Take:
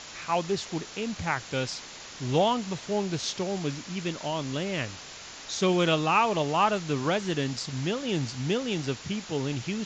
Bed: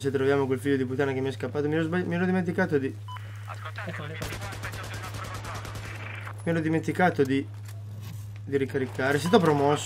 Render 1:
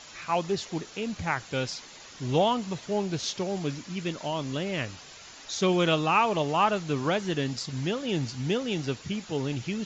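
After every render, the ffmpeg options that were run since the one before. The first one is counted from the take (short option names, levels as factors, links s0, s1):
-af "afftdn=nr=7:nf=-44"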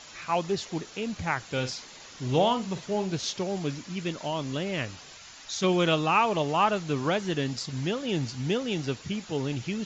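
-filter_complex "[0:a]asettb=1/sr,asplit=3[s0][s1][s2];[s0]atrim=end=1.444[s3];[s1]atrim=start=1.44:end=3.17,asetpts=PTS-STARTPTS,afade=t=in:d=0.004:c=qsin,afade=t=out:st=1.726:d=0.004:c=qsin,asplit=2[s4][s5];[s5]adelay=47,volume=0.266[s6];[s4][s6]amix=inputs=2:normalize=0,atrim=end_sample=76293[s7];[s2]atrim=start=3.166[s8];[s3][s7]acrossfade=d=0.004:c1=hsin:c2=qsin[s9];[s9][s8]acrossfade=d=0.004:c1=qsin:c2=hsin,asettb=1/sr,asplit=3[s10][s11][s12];[s10]atrim=end=5.174[s13];[s11]atrim=start=5.17:end=5.64,asetpts=PTS-STARTPTS,afade=t=in:d=0.004:c=qsin,afade=t=out:st=0.466:d=0.004:c=qsin,equalizer=f=400:t=o:w=1.6:g=-6.5[s14];[s12]atrim=start=5.636[s15];[s13][s14]acrossfade=d=0.004:c1=hsin:c2=qsin[s16];[s16][s15]acrossfade=d=0.004:c1=qsin:c2=hsin"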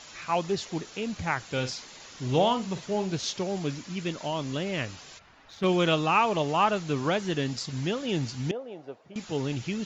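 -filter_complex "[0:a]asplit=3[s0][s1][s2];[s0]afade=t=out:st=5.18:d=0.02[s3];[s1]adynamicsmooth=sensitivity=1:basefreq=1800,afade=t=in:st=5.18:d=0.02,afade=t=out:st=5.64:d=0.02[s4];[s2]afade=t=in:st=5.64:d=0.02[s5];[s3][s4][s5]amix=inputs=3:normalize=0,asettb=1/sr,asplit=3[s6][s7][s8];[s6]atrim=end=8.514[s9];[s7]atrim=start=8.51:end=9.16,asetpts=PTS-STARTPTS,afade=t=in:d=0.004:c=qsin,afade=t=out:st=0.646:d=0.004:c=qsin,bandpass=f=640:t=q:w=2.6[s10];[s8]atrim=start=9.156[s11];[s9][s10]acrossfade=d=0.004:c1=hsin:c2=qsin[s12];[s12][s11]acrossfade=d=0.004:c1=qsin:c2=hsin"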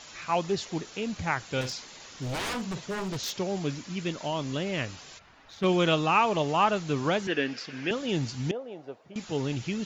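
-filter_complex "[0:a]asettb=1/sr,asplit=3[s0][s1][s2];[s0]atrim=end=1.614[s3];[s1]atrim=start=1.61:end=3.35,asetpts=PTS-STARTPTS,afade=t=in:d=0.004:c=qsin,afade=t=out:st=1.736:d=0.004:c=qsin,aeval=exprs='0.0447*(abs(mod(val(0)/0.0447+3,4)-2)-1)':c=same[s4];[s2]atrim=start=3.346[s5];[s3][s4]acrossfade=d=0.004:c1=hsin:c2=qsin[s6];[s6][s5]acrossfade=d=0.004:c1=qsin:c2=hsin,asettb=1/sr,asplit=3[s7][s8][s9];[s7]atrim=end=7.274[s10];[s8]atrim=start=7.27:end=7.91,asetpts=PTS-STARTPTS,afade=t=in:d=0.004:c=qsin,afade=t=out:st=0.636:d=0.004:c=qsin,highpass=280,equalizer=f=280:t=q:w=4:g=3,equalizer=f=470:t=q:w=4:g=4,equalizer=f=960:t=q:w=4:g=-4,equalizer=f=1600:t=q:w=4:g=10,equalizer=f=2500:t=q:w=4:g=8,equalizer=f=4000:t=q:w=4:g=-7,lowpass=f=5100:w=0.5412,lowpass=f=5100:w=1.3066[s11];[s9]atrim=start=7.906[s12];[s10][s11]acrossfade=d=0.004:c1=hsin:c2=qsin[s13];[s13][s12]acrossfade=d=0.004:c1=qsin:c2=hsin"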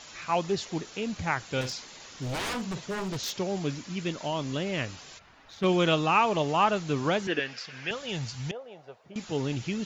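-filter_complex "[0:a]asettb=1/sr,asplit=3[s0][s1][s2];[s0]atrim=end=7.394[s3];[s1]atrim=start=7.39:end=9.04,asetpts=PTS-STARTPTS,afade=t=in:d=0.004:c=qsin,afade=t=out:st=1.646:d=0.004:c=qsin,equalizer=f=290:w=1.5:g=-14.5[s4];[s2]atrim=start=9.036[s5];[s3][s4]acrossfade=d=0.004:c1=hsin:c2=qsin[s6];[s6][s5]acrossfade=d=0.004:c1=qsin:c2=hsin"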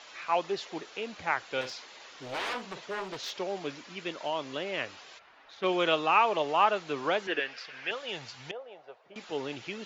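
-filter_complex "[0:a]acrossover=split=340 4600:gain=0.112 1 0.2[s0][s1][s2];[s0][s1][s2]amix=inputs=3:normalize=0"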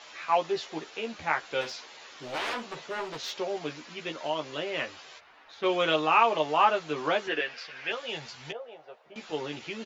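-filter_complex "[0:a]asplit=2[s0][s1];[s1]adelay=13,volume=0.668[s2];[s0][s2]amix=inputs=2:normalize=0"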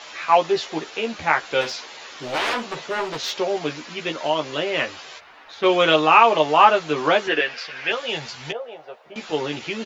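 -af "volume=2.82,alimiter=limit=0.891:level=0:latency=1"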